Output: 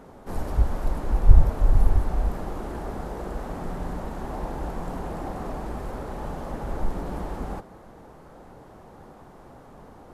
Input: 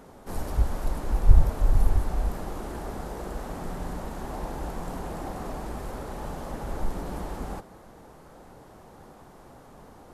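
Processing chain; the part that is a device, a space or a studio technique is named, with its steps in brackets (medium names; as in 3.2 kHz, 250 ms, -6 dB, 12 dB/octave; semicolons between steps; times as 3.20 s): behind a face mask (treble shelf 3.3 kHz -8 dB); trim +2.5 dB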